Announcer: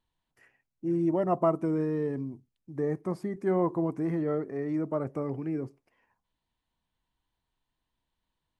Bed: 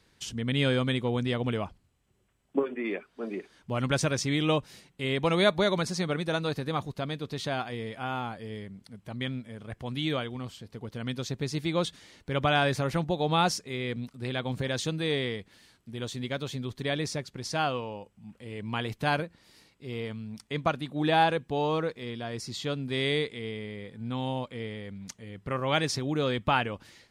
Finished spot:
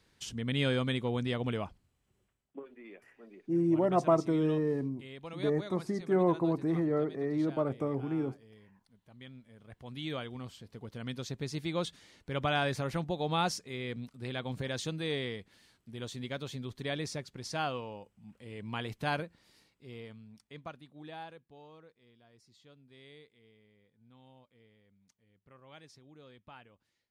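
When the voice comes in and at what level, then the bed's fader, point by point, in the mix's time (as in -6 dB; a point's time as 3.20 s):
2.65 s, -0.5 dB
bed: 2.24 s -4 dB
2.55 s -18.5 dB
9.11 s -18.5 dB
10.33 s -5.5 dB
19.39 s -5.5 dB
21.73 s -27 dB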